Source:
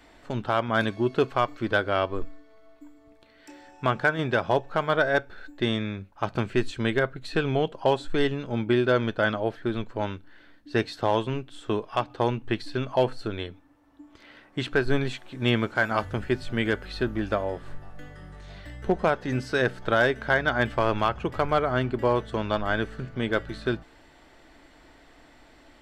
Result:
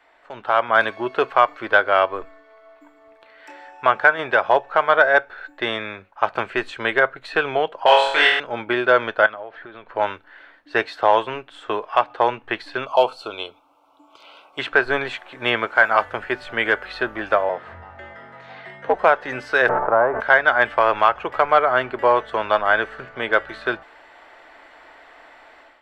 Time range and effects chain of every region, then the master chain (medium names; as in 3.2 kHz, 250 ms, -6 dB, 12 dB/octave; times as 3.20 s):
7.86–8.40 s: tilt shelf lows -9.5 dB, about 770 Hz + flutter echo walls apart 4.1 m, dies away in 0.71 s
9.26–9.95 s: low-pass 4.1 kHz + compression 16:1, threshold -35 dBFS
12.86–14.59 s: Butterworth band-stop 1.8 kHz, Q 1.5 + tilt EQ +2 dB/octave
17.49–18.94 s: frequency shift +79 Hz + distance through air 82 m
19.67–20.20 s: formants flattened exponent 0.6 + low-pass 1.1 kHz 24 dB/octave + decay stretcher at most 22 dB/s
whole clip: three-band isolator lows -23 dB, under 510 Hz, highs -15 dB, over 2.8 kHz; level rider gain up to 10.5 dB; trim +1.5 dB